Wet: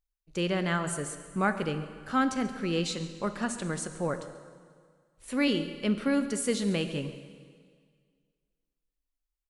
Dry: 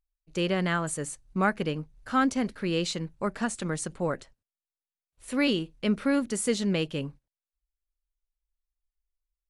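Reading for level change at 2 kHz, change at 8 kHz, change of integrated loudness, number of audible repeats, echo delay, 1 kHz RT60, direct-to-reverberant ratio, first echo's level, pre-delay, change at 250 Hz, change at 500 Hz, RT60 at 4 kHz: −1.5 dB, −1.5 dB, −1.5 dB, 1, 138 ms, 1.9 s, 9.0 dB, −17.5 dB, 6 ms, −1.5 dB, −1.5 dB, 1.8 s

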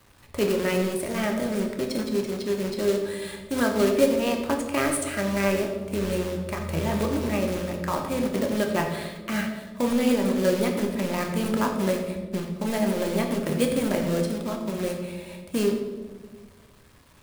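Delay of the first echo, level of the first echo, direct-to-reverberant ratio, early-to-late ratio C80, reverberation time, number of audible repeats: no echo audible, no echo audible, 2.0 dB, 7.5 dB, 1.4 s, no echo audible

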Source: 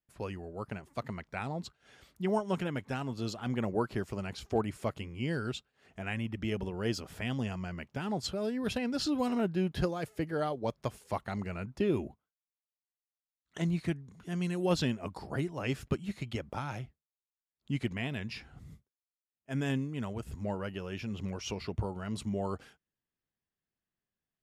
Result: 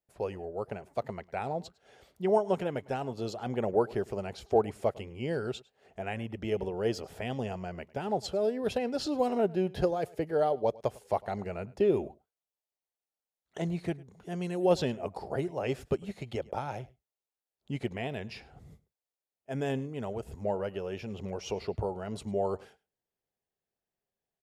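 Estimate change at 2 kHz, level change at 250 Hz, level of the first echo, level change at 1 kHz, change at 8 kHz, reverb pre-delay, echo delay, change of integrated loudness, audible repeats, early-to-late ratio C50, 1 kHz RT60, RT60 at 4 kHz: −2.5 dB, −1.5 dB, −22.5 dB, +4.5 dB, −2.5 dB, no reverb audible, 104 ms, +2.5 dB, 1, no reverb audible, no reverb audible, no reverb audible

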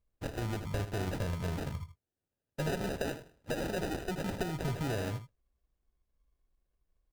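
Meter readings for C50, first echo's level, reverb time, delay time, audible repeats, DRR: no reverb audible, −11.0 dB, no reverb audible, 78 ms, 1, no reverb audible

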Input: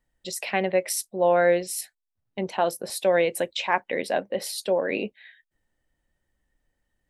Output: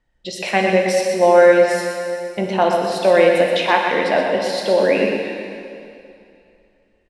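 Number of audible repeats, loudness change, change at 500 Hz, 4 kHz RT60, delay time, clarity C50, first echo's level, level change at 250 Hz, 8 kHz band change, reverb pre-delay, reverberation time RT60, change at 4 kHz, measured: 1, +9.0 dB, +10.0 dB, 2.4 s, 124 ms, 1.0 dB, −7.0 dB, +10.0 dB, −1.0 dB, 5 ms, 2.6 s, +8.0 dB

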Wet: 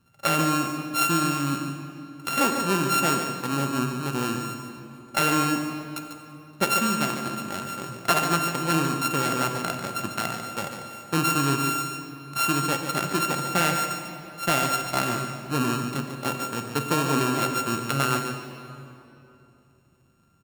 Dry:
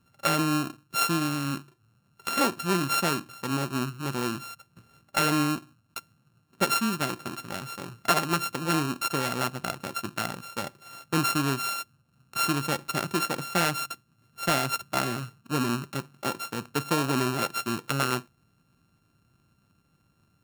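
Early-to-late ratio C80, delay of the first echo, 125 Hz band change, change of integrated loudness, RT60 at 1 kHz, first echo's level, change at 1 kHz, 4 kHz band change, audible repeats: 5.0 dB, 145 ms, +3.0 dB, +3.0 dB, 2.8 s, −8.5 dB, +4.0 dB, +1.5 dB, 1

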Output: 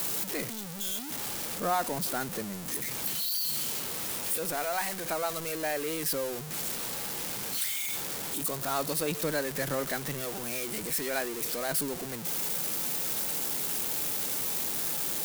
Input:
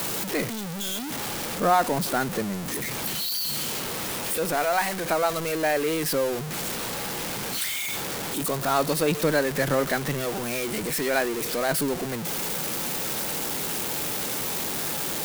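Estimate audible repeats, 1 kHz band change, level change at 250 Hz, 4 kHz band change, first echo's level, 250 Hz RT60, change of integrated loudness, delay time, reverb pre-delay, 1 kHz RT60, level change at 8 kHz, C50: no echo audible, −8.0 dB, −8.5 dB, −5.0 dB, no echo audible, no reverb audible, −4.5 dB, no echo audible, no reverb audible, no reverb audible, −2.5 dB, no reverb audible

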